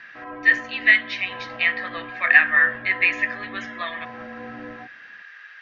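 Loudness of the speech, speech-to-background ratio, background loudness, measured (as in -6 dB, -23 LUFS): -19.5 LUFS, 18.5 dB, -38.0 LUFS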